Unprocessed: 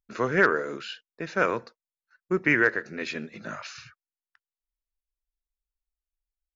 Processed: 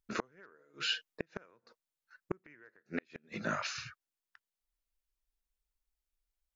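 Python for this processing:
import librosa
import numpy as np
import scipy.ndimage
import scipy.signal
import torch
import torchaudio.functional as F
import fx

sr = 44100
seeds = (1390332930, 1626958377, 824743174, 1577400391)

y = fx.comb(x, sr, ms=6.5, depth=0.98, at=(0.59, 1.22), fade=0.02)
y = fx.gate_flip(y, sr, shuts_db=-21.0, range_db=-39)
y = y * librosa.db_to_amplitude(2.0)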